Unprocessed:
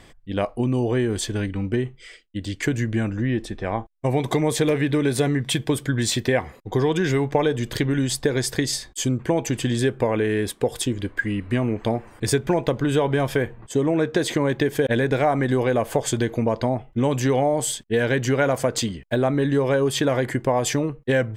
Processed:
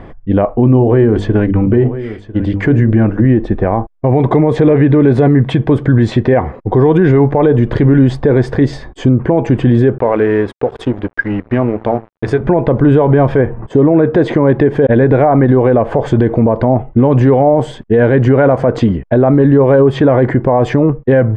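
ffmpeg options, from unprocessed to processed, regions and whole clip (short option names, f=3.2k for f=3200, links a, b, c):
-filter_complex "[0:a]asettb=1/sr,asplit=3[a][b][c];[a]atrim=end=0.644[d];[b]atrim=start=0.64:end=3.26,asetpts=PTS-STARTPTS,afade=t=in:d=0.004:c=qsin,afade=t=out:st=2.616:d=0.004:c=qsin,bandreject=f=50:t=h:w=6,bandreject=f=100:t=h:w=6,bandreject=f=150:t=h:w=6,bandreject=f=200:t=h:w=6,bandreject=f=250:t=h:w=6,bandreject=f=300:t=h:w=6,bandreject=f=350:t=h:w=6,bandreject=f=400:t=h:w=6,bandreject=f=450:t=h:w=6,bandreject=f=500:t=h:w=6,aecho=1:1:998:0.141,atrim=end_sample=115542[e];[c]atrim=start=3.256[f];[d][e]acrossfade=d=0.004:c1=hsin:c2=qsin[g];[g][f]acrossfade=d=0.004:c1=qsin:c2=hsin,asettb=1/sr,asplit=3[h][i][j];[h]atrim=end=9.984[k];[i]atrim=start=9.98:end=12.41,asetpts=PTS-STARTPTS,afade=t=in:d=0.004:c=qsin,afade=t=out:st=2.426:d=0.004:c=qsin,lowshelf=f=480:g=-8,bandreject=f=55.8:t=h:w=4,bandreject=f=111.6:t=h:w=4,bandreject=f=167.4:t=h:w=4,bandreject=f=223.2:t=h:w=4,bandreject=f=279:t=h:w=4,bandreject=f=334.8:t=h:w=4,bandreject=f=390.6:t=h:w=4,bandreject=f=446.4:t=h:w=4,aeval=exprs='sgn(val(0))*max(abs(val(0))-0.00944,0)':c=same[l];[j]atrim=start=12.406[m];[k][l]acrossfade=d=0.004:c1=hsin:c2=qsin[n];[n][m]acrossfade=d=0.004:c1=qsin:c2=hsin,lowpass=1.1k,alimiter=level_in=18.5dB:limit=-1dB:release=50:level=0:latency=1,volume=-1dB"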